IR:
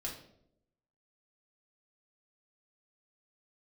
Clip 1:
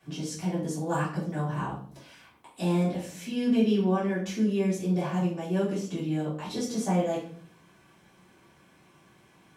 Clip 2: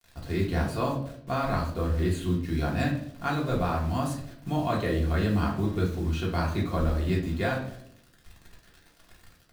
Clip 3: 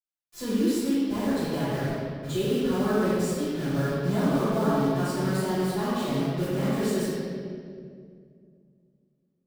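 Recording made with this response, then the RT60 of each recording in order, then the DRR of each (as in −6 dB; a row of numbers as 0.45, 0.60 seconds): 2; 0.50, 0.75, 2.2 seconds; −10.0, −4.0, −16.5 decibels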